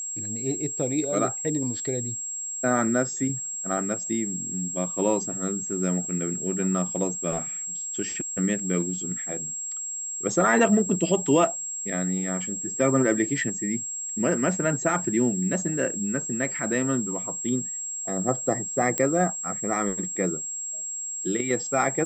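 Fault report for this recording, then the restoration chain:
whine 7.6 kHz -30 dBFS
18.98 s: pop -9 dBFS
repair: de-click; band-stop 7.6 kHz, Q 30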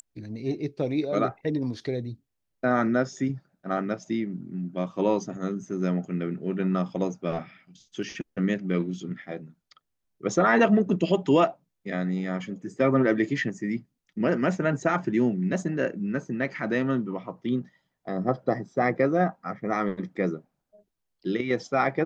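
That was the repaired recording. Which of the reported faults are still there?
18.98 s: pop

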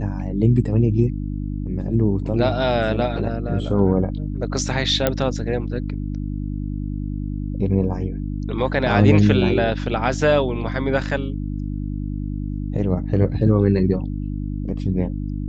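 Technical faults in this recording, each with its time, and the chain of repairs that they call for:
hum 50 Hz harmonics 6 -26 dBFS
5.07 s: pop -4 dBFS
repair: de-click; de-hum 50 Hz, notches 6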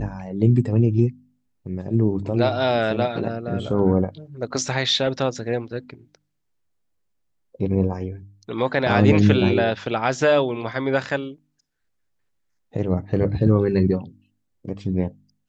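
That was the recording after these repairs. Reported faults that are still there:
nothing left

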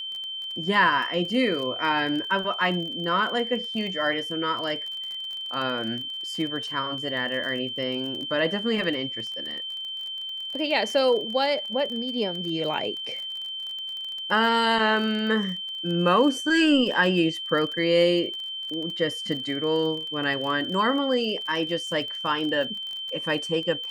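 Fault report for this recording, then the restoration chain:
crackle 31 per s -32 dBFS
whine 3.1 kHz -31 dBFS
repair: de-click; band-stop 3.1 kHz, Q 30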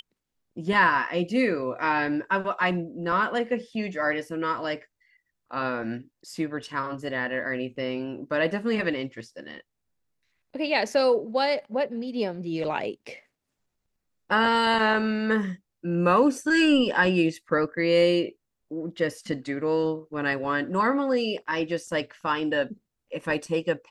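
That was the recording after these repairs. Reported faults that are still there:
nothing left

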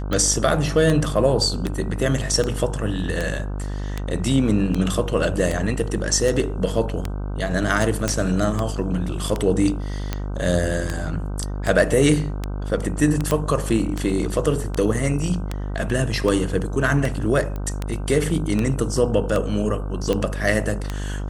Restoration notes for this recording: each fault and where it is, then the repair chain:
buzz 50 Hz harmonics 31 -27 dBFS
tick 78 rpm -10 dBFS
8.08 s: pop -7 dBFS
13.31 s: pop -7 dBFS
17.56 s: pop -18 dBFS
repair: de-click; de-hum 50 Hz, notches 31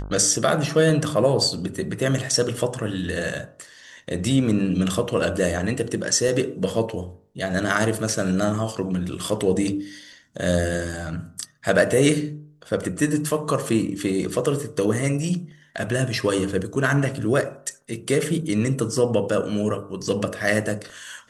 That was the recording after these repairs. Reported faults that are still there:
nothing left

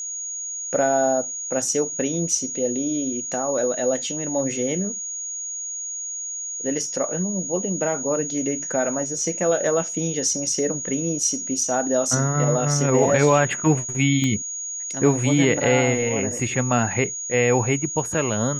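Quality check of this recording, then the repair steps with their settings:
whine 6.7 kHz -28 dBFS
14.24 s: pop -12 dBFS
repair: de-click; band-stop 6.7 kHz, Q 30

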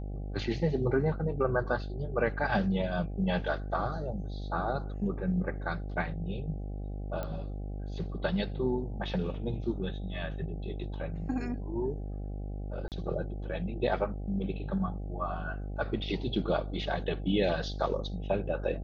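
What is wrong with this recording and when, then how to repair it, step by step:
buzz 50 Hz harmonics 16 -37 dBFS
7.23 s: pop -23 dBFS
12.88–12.92 s: dropout 38 ms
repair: de-click; de-hum 50 Hz, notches 16; interpolate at 12.88 s, 38 ms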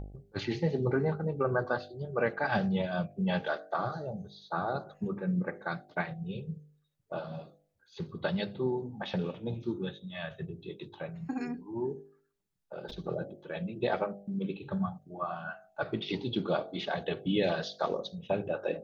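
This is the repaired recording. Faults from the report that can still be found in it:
nothing left

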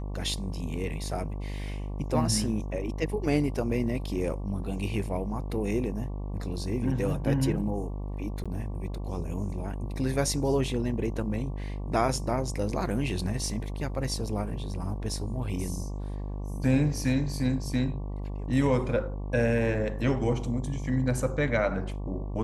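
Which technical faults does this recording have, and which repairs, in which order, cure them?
buzz 50 Hz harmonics 23 -34 dBFS
8.44–8.46 s: dropout 16 ms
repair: de-hum 50 Hz, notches 23; interpolate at 8.44 s, 16 ms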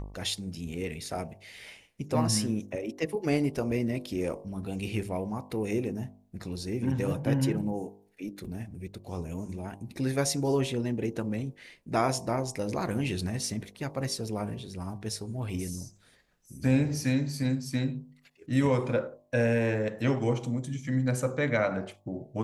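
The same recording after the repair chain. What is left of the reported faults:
nothing left

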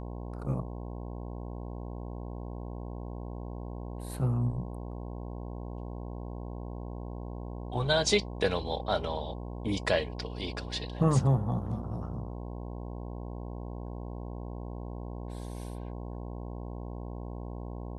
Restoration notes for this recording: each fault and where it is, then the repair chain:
buzz 60 Hz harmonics 18 -39 dBFS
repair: de-hum 60 Hz, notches 18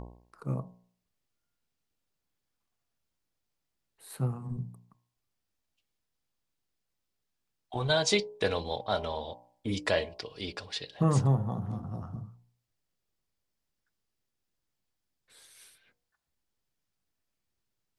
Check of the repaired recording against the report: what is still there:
nothing left

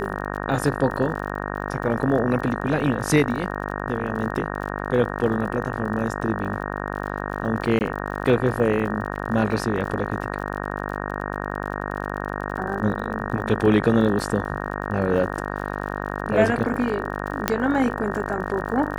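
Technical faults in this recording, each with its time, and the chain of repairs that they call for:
buzz 50 Hz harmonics 37 -29 dBFS
crackle 47 per s -33 dBFS
7.79–7.81 s: dropout 19 ms
9.16 s: dropout 2 ms
17.48 s: pop -4 dBFS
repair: de-click; de-hum 50 Hz, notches 37; interpolate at 7.79 s, 19 ms; interpolate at 9.16 s, 2 ms

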